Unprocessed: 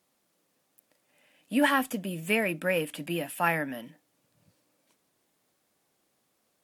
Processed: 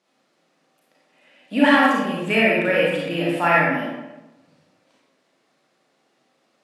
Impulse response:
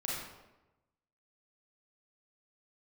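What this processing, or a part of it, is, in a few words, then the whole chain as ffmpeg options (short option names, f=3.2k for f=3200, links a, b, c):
supermarket ceiling speaker: -filter_complex "[0:a]highpass=200,lowpass=5.2k[a];[1:a]atrim=start_sample=2205[b];[a][b]afir=irnorm=-1:irlink=0,volume=7dB"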